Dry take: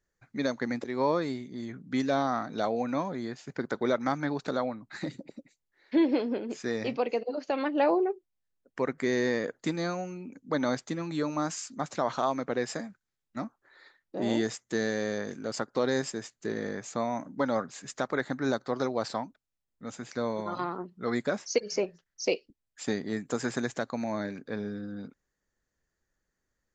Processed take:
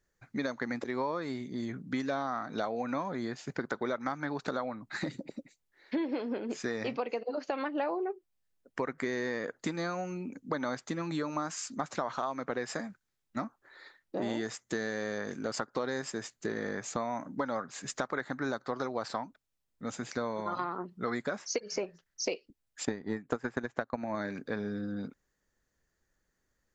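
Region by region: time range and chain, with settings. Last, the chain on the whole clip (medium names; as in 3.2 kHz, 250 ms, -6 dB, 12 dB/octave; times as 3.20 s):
22.85–24.15 s: low-pass 1.9 kHz 6 dB/octave + transient shaper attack +11 dB, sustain -6 dB
whole clip: dynamic bell 1.3 kHz, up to +6 dB, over -44 dBFS, Q 0.88; compression 5:1, threshold -34 dBFS; trim +3 dB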